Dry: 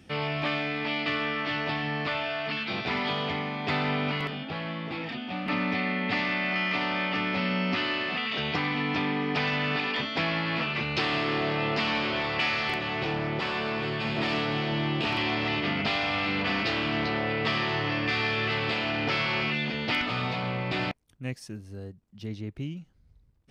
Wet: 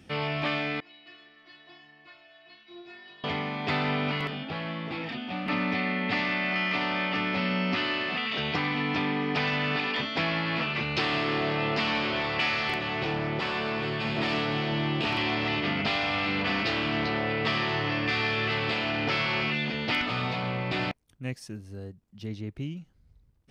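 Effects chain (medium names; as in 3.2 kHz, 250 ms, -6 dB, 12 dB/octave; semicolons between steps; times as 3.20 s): 0.80–3.24 s: inharmonic resonator 350 Hz, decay 0.46 s, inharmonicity 0.002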